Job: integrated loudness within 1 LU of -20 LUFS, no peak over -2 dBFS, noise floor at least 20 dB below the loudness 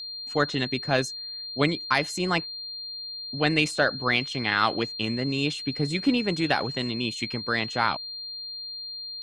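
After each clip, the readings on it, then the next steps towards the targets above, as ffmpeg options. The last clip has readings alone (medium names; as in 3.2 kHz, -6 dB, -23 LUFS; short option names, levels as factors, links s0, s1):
steady tone 4.2 kHz; tone level -34 dBFS; loudness -26.5 LUFS; peak level -7.0 dBFS; loudness target -20.0 LUFS
-> -af "bandreject=f=4200:w=30"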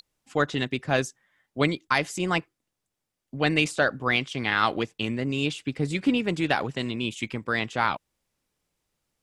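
steady tone not found; loudness -26.5 LUFS; peak level -7.0 dBFS; loudness target -20.0 LUFS
-> -af "volume=2.11,alimiter=limit=0.794:level=0:latency=1"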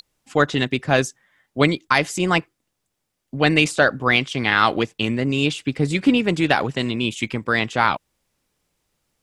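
loudness -20.0 LUFS; peak level -2.0 dBFS; noise floor -77 dBFS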